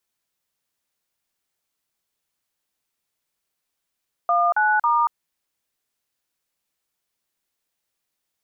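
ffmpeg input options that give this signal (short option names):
-f lavfi -i "aevalsrc='0.119*clip(min(mod(t,0.274),0.233-mod(t,0.274))/0.002,0,1)*(eq(floor(t/0.274),0)*(sin(2*PI*697*mod(t,0.274))+sin(2*PI*1209*mod(t,0.274)))+eq(floor(t/0.274),1)*(sin(2*PI*852*mod(t,0.274))+sin(2*PI*1477*mod(t,0.274)))+eq(floor(t/0.274),2)*(sin(2*PI*941*mod(t,0.274))+sin(2*PI*1209*mod(t,0.274))))':d=0.822:s=44100"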